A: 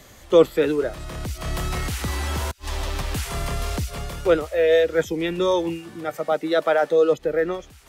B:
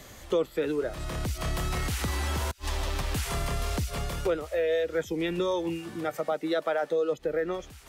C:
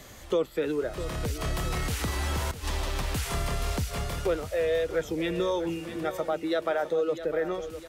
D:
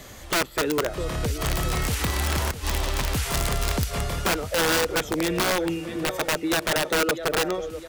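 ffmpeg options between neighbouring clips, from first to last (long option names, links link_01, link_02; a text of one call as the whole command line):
ffmpeg -i in.wav -af "acompressor=threshold=-27dB:ratio=3" out.wav
ffmpeg -i in.wav -af "aecho=1:1:654|1308|1962|2616|3270:0.251|0.118|0.0555|0.0261|0.0123" out.wav
ffmpeg -i in.wav -af "aeval=exprs='(mod(11.9*val(0)+1,2)-1)/11.9':channel_layout=same,volume=4.5dB" out.wav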